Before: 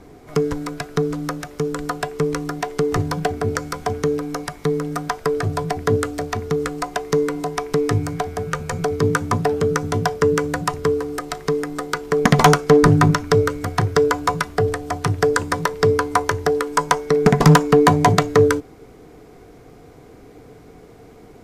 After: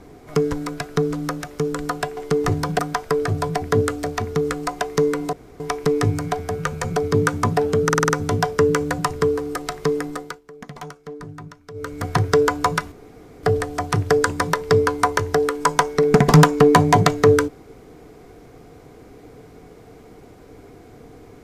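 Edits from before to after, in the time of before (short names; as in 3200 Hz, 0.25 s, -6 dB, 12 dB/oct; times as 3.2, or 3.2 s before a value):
2.17–2.65 cut
3.27–4.94 cut
7.48 insert room tone 0.27 s
9.72 stutter 0.05 s, 6 plays
11.68–13.73 dip -23.5 dB, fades 0.36 s
14.55 insert room tone 0.51 s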